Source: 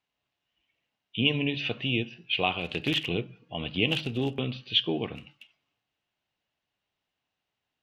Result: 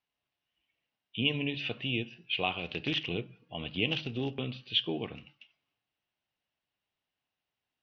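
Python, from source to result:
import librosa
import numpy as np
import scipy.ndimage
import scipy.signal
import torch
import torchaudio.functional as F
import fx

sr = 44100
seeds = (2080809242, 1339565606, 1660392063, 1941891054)

y = scipy.signal.sosfilt(scipy.signal.ellip(4, 1.0, 40, 5800.0, 'lowpass', fs=sr, output='sos'), x)
y = y * 10.0 ** (-4.0 / 20.0)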